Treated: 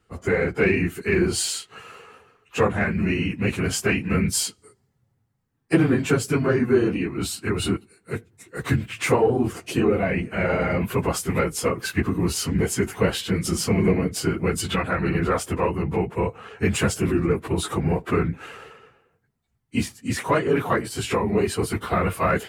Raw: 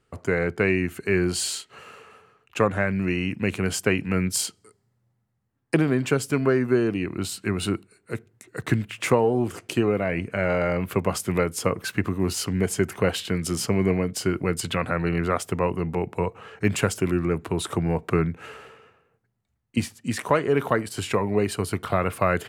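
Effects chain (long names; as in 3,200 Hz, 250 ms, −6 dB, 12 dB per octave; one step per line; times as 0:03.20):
random phases in long frames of 50 ms
in parallel at −10.5 dB: soft clipping −19 dBFS, distortion −12 dB
on the sum: notch filter 590 Hz, Q 12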